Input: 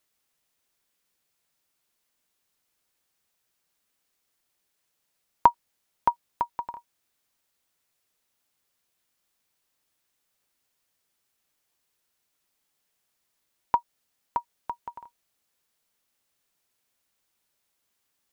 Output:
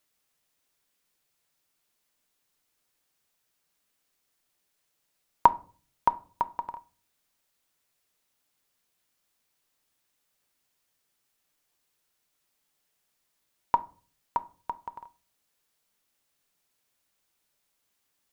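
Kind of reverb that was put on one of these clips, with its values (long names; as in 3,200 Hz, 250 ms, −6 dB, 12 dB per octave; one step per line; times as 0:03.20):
rectangular room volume 280 cubic metres, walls furnished, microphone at 0.39 metres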